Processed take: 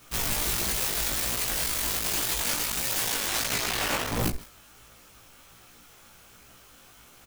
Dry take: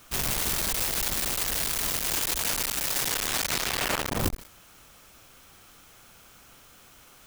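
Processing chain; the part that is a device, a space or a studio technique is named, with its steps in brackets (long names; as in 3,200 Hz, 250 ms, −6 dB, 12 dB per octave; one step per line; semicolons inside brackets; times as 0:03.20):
double-tracked vocal (double-tracking delay 17 ms −5 dB; chorus effect 1.4 Hz, delay 16.5 ms, depth 4.1 ms)
level +2 dB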